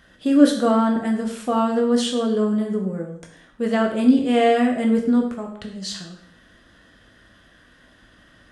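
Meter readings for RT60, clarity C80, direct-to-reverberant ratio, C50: 0.60 s, 10.0 dB, 1.5 dB, 6.5 dB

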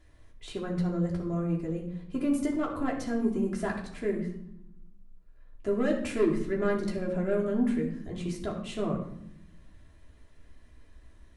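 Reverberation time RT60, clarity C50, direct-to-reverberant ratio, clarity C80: 0.75 s, 7.0 dB, -2.5 dB, 9.5 dB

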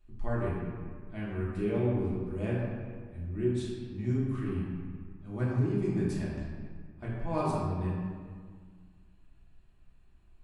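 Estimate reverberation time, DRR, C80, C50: 1.8 s, -8.0 dB, 1.0 dB, -1.0 dB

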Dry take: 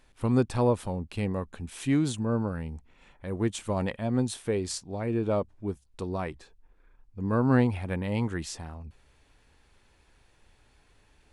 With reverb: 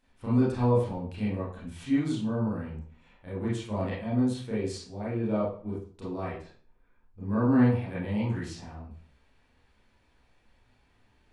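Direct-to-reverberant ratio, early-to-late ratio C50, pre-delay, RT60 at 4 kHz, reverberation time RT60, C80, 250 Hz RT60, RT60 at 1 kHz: -9.0 dB, 1.5 dB, 26 ms, 0.40 s, 0.45 s, 7.0 dB, 0.55 s, 0.45 s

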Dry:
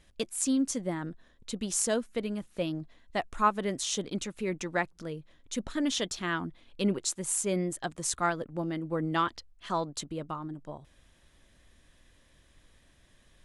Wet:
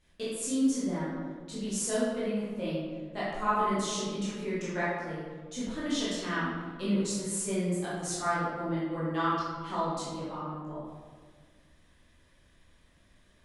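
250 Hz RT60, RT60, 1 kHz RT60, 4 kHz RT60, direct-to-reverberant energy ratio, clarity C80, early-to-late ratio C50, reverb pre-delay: 1.9 s, 1.6 s, 1.5 s, 0.90 s, -10.0 dB, 1.0 dB, -2.5 dB, 13 ms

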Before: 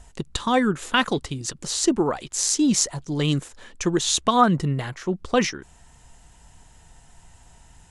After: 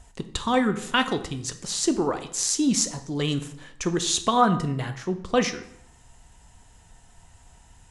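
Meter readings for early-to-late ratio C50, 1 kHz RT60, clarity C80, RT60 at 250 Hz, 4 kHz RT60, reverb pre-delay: 12.5 dB, 0.70 s, 15.5 dB, 0.75 s, 0.55 s, 3 ms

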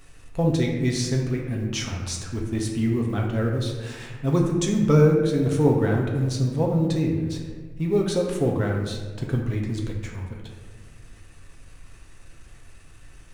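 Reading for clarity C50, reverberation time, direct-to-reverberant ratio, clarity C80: 3.5 dB, 1.6 s, -1.0 dB, 5.5 dB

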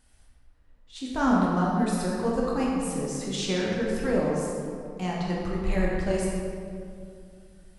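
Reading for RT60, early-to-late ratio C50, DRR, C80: 2.3 s, -1.0 dB, -4.5 dB, 0.5 dB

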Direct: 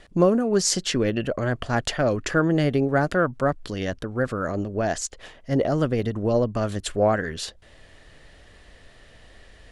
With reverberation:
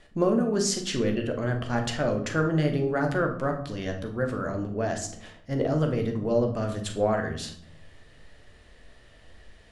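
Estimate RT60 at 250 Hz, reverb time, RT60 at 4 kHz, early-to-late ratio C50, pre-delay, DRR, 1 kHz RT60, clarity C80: 1.0 s, 0.65 s, 0.45 s, 8.5 dB, 9 ms, 3.0 dB, 0.65 s, 13.0 dB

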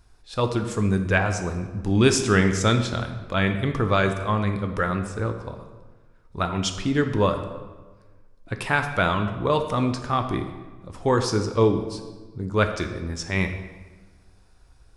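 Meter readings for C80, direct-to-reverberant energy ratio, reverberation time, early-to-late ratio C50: 10.0 dB, 6.0 dB, 1.3 s, 8.5 dB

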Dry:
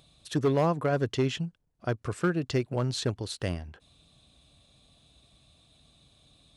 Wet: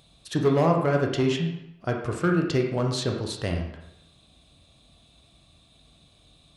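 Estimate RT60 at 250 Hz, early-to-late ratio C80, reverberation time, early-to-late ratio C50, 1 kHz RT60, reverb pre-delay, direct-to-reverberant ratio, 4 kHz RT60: 0.80 s, 7.5 dB, 0.85 s, 5.0 dB, 0.90 s, 17 ms, 1.5 dB, 0.70 s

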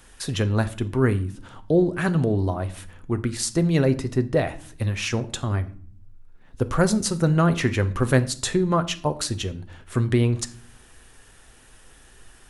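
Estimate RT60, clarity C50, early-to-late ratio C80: 0.50 s, 17.0 dB, 21.0 dB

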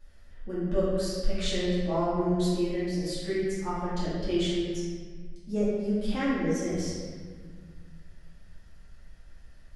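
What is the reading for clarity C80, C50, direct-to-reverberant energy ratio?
0.0 dB, -2.5 dB, -11.5 dB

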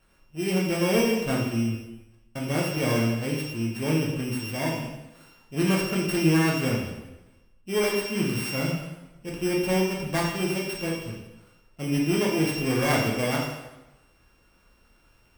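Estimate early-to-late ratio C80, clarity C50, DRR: 5.5 dB, 2.5 dB, -3.5 dB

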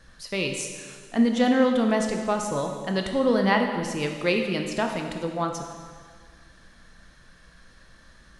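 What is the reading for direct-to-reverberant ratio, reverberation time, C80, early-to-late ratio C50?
3.5 dB, 1.8 s, 6.5 dB, 5.0 dB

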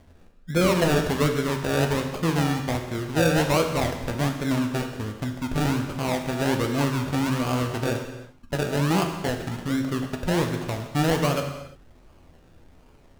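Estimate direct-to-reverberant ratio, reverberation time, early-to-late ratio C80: 3.5 dB, no single decay rate, 8.0 dB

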